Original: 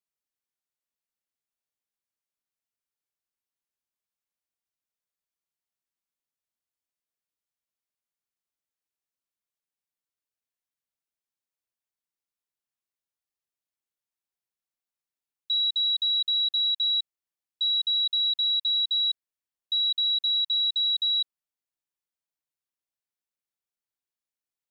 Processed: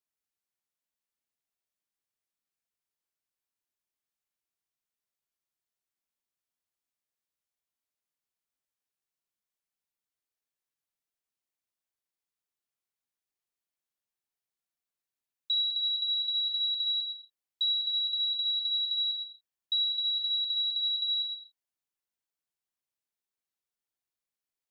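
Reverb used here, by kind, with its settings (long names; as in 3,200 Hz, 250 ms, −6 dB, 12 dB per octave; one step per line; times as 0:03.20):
reverb whose tail is shaped and stops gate 300 ms falling, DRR 7.5 dB
level −1.5 dB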